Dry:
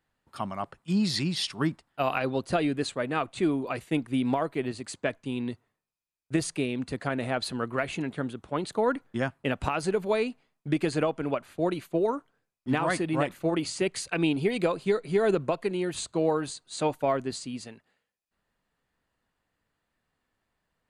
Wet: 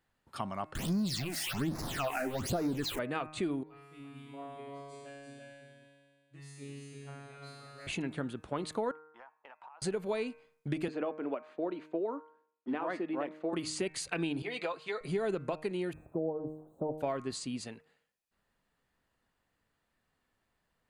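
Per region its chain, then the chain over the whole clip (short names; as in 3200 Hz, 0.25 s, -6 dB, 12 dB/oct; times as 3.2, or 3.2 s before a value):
0.75–2.99 zero-crossing step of -27.5 dBFS + phaser stages 8, 1.2 Hz, lowest notch 130–3000 Hz
3.63–7.87 resonator 140 Hz, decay 2 s, mix 100% + echo 0.341 s -4 dB
8.91–9.82 ladder band-pass 1000 Hz, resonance 70% + compressor 12:1, threshold -48 dBFS
10.88–13.53 HPF 240 Hz 24 dB/oct + tape spacing loss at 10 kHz 29 dB
14.42–15.01 HPF 80 Hz + three-band isolator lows -15 dB, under 560 Hz, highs -15 dB, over 5700 Hz + notch comb 190 Hz
15.93–16.98 switching spikes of -25.5 dBFS + inverse Chebyshev low-pass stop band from 1900 Hz, stop band 50 dB
whole clip: de-hum 154.7 Hz, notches 17; compressor 2.5:1, threshold -34 dBFS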